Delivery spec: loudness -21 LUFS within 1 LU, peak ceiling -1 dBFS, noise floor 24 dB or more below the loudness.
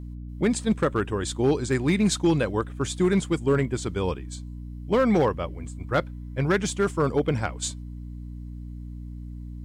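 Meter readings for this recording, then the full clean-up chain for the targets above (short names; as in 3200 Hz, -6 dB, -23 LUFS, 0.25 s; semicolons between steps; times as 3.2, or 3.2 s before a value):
clipped 0.7%; flat tops at -14.5 dBFS; hum 60 Hz; harmonics up to 300 Hz; hum level -34 dBFS; loudness -25.0 LUFS; peak -14.5 dBFS; loudness target -21.0 LUFS
-> clip repair -14.5 dBFS; notches 60/120/180/240/300 Hz; gain +4 dB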